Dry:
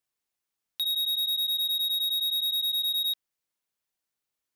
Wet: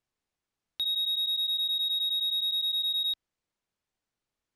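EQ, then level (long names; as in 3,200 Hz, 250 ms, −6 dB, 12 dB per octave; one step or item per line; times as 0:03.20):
low-pass filter 8,700 Hz 12 dB per octave
spectral tilt −2 dB per octave
+3.0 dB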